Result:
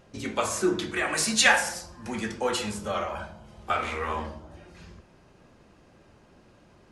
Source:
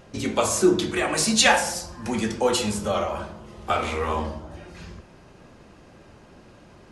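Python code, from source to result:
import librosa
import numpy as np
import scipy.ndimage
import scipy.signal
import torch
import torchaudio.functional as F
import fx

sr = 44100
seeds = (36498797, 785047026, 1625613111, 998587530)

y = fx.high_shelf(x, sr, hz=5400.0, db=5.5, at=(1.06, 1.69))
y = fx.comb(y, sr, ms=1.3, depth=0.49, at=(3.15, 3.62))
y = fx.dynamic_eq(y, sr, hz=1700.0, q=1.1, threshold_db=-40.0, ratio=4.0, max_db=8)
y = y * librosa.db_to_amplitude(-7.0)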